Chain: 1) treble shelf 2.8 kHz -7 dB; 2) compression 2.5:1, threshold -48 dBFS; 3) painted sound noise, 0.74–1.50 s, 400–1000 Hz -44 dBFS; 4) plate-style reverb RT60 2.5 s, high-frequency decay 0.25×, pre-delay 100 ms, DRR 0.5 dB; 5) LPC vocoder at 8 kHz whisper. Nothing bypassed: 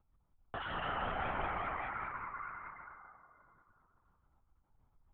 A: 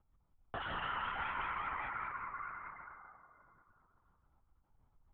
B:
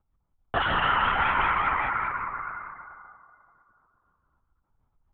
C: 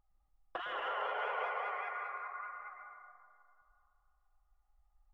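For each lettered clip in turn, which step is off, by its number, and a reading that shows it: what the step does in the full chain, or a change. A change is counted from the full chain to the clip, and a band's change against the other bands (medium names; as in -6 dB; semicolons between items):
3, 500 Hz band -7.0 dB; 2, mean gain reduction 12.5 dB; 5, 500 Hz band +2.0 dB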